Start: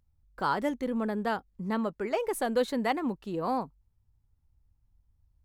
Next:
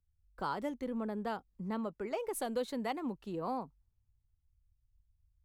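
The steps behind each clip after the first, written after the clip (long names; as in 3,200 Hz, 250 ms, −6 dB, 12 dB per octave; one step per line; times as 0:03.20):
downward compressor 2 to 1, threshold −35 dBFS, peak gain reduction 8 dB
dynamic equaliser 1,700 Hz, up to −5 dB, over −53 dBFS, Q 3.2
multiband upward and downward expander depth 40%
level −2 dB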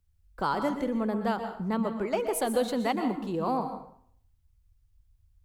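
dense smooth reverb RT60 0.59 s, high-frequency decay 0.75×, pre-delay 110 ms, DRR 7.5 dB
level +8 dB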